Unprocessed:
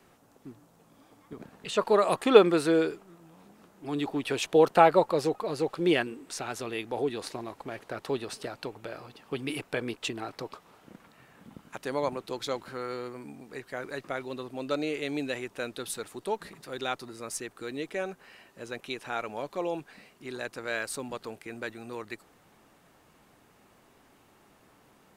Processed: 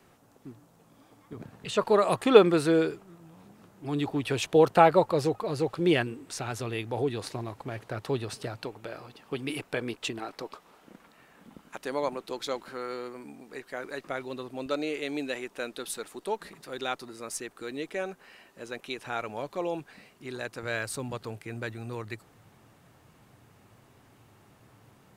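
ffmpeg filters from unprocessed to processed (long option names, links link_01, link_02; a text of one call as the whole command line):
ffmpeg -i in.wav -af "asetnsamples=nb_out_samples=441:pad=0,asendcmd='1.35 equalizer g 12.5;8.64 equalizer g 1;10.19 equalizer g -10;14.07 equalizer g -0.5;14.66 equalizer g -11;16.49 equalizer g -4;18.98 equalizer g 5.5;20.63 equalizer g 14',equalizer=frequency=110:width_type=o:width=0.84:gain=4" out.wav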